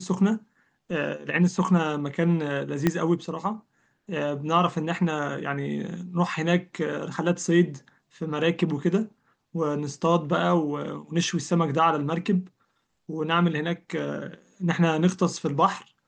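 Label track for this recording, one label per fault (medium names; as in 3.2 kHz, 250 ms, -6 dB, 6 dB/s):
2.870000	2.870000	pop -8 dBFS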